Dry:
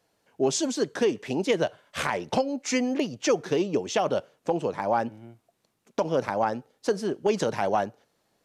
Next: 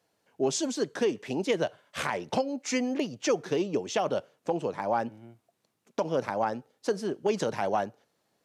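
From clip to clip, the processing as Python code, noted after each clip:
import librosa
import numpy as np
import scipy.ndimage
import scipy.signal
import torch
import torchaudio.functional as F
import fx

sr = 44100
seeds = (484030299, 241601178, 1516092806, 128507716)

y = scipy.signal.sosfilt(scipy.signal.butter(2, 78.0, 'highpass', fs=sr, output='sos'), x)
y = y * librosa.db_to_amplitude(-3.0)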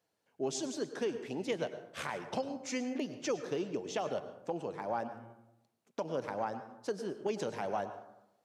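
y = fx.rev_plate(x, sr, seeds[0], rt60_s=0.85, hf_ratio=0.45, predelay_ms=90, drr_db=10.0)
y = y * librosa.db_to_amplitude(-8.0)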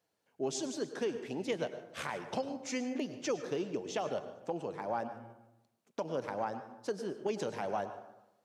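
y = fx.echo_feedback(x, sr, ms=149, feedback_pct=47, wet_db=-22.5)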